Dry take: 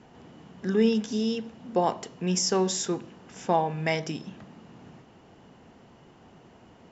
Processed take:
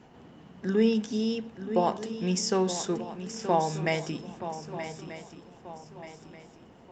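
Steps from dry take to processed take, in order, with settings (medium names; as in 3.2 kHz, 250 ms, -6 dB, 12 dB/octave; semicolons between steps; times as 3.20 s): 4.30–4.72 s: low-pass 3.9 kHz 12 dB/octave; shuffle delay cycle 1234 ms, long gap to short 3:1, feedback 39%, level -11 dB; trim -1 dB; Opus 48 kbps 48 kHz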